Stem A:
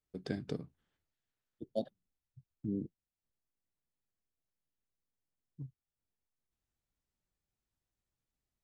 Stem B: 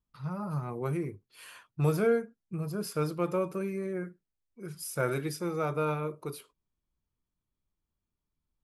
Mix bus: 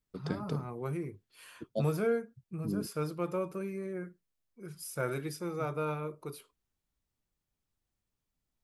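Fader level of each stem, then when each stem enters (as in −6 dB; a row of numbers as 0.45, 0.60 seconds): +1.0, −4.0 decibels; 0.00, 0.00 seconds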